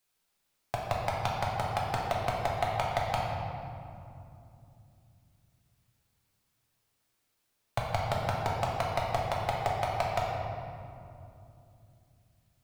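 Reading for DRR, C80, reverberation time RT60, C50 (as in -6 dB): -3.5 dB, 1.0 dB, 2.8 s, 0.0 dB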